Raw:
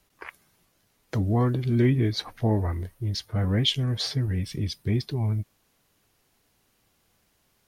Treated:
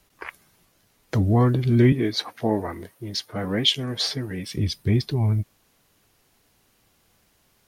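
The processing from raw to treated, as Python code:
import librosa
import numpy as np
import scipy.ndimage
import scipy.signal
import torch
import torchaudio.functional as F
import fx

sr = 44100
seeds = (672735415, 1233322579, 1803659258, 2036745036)

y = fx.highpass(x, sr, hz=230.0, slope=12, at=(1.92, 4.56))
y = y * 10.0 ** (4.5 / 20.0)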